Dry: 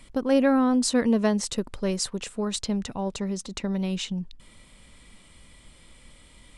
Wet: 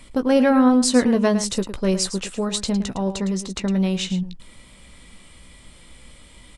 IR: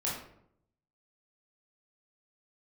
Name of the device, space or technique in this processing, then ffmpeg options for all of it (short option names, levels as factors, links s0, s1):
slapback doubling: -filter_complex "[0:a]asplit=3[s0][s1][s2];[s1]adelay=16,volume=0.355[s3];[s2]adelay=109,volume=0.282[s4];[s0][s3][s4]amix=inputs=3:normalize=0,volume=1.68"